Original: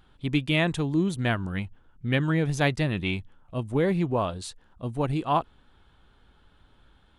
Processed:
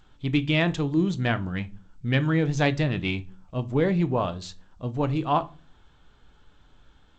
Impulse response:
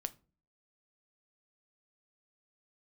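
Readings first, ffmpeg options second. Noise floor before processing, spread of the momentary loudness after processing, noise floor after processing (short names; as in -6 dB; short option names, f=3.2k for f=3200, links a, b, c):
-60 dBFS, 13 LU, -58 dBFS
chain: -filter_complex "[1:a]atrim=start_sample=2205[a];[0:a][a]afir=irnorm=-1:irlink=0,volume=2dB" -ar 16000 -c:a g722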